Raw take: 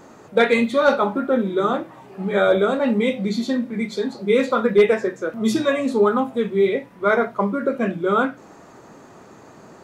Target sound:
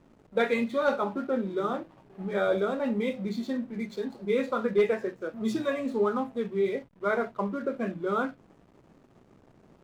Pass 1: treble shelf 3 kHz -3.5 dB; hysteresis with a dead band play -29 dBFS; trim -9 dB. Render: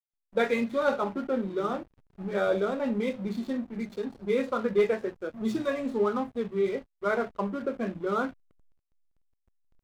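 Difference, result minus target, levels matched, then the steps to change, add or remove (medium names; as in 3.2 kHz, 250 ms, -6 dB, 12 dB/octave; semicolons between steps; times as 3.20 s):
hysteresis with a dead band: distortion +8 dB
change: hysteresis with a dead band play -37.5 dBFS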